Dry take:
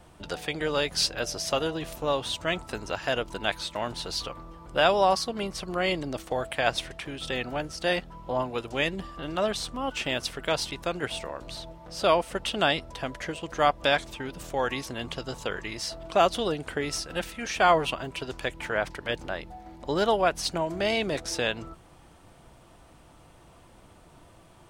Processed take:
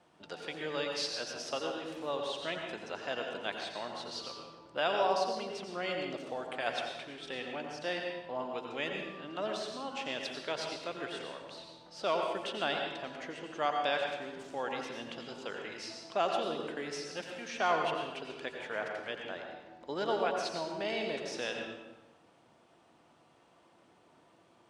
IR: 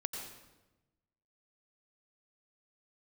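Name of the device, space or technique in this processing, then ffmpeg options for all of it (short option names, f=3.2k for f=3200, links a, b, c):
supermarket ceiling speaker: -filter_complex "[0:a]highpass=210,lowpass=6.3k[a];[1:a]atrim=start_sample=2205[b];[a][b]afir=irnorm=-1:irlink=0,volume=-8.5dB"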